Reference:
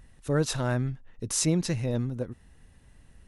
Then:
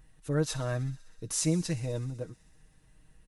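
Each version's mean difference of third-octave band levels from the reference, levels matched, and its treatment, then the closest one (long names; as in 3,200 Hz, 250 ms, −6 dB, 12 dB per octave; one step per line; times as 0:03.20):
2.5 dB: high-shelf EQ 9,800 Hz +4 dB
comb filter 6.4 ms
on a send: delay with a high-pass on its return 63 ms, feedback 81%, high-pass 2,400 Hz, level −18 dB
on the sum: level −6.5 dB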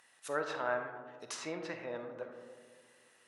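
10.0 dB: treble cut that deepens with the level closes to 1,700 Hz, closed at −26 dBFS
high-pass filter 870 Hz 12 dB per octave
comb and all-pass reverb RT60 1.8 s, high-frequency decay 0.25×, pre-delay 5 ms, DRR 5 dB
level +1.5 dB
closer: first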